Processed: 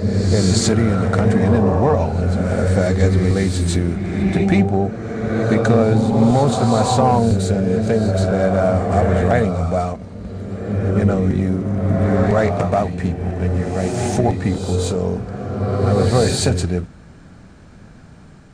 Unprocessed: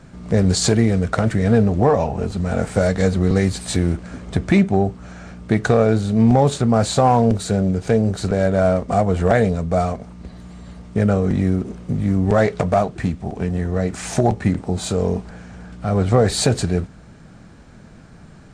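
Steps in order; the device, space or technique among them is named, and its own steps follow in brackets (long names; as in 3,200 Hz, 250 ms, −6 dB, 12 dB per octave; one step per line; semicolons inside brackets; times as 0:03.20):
reverse reverb (reversed playback; convolution reverb RT60 2.3 s, pre-delay 116 ms, DRR 2.5 dB; reversed playback)
level −1 dB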